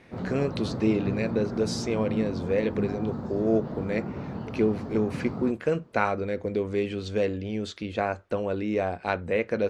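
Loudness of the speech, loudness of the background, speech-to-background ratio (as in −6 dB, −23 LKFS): −28.5 LKFS, −34.0 LKFS, 5.5 dB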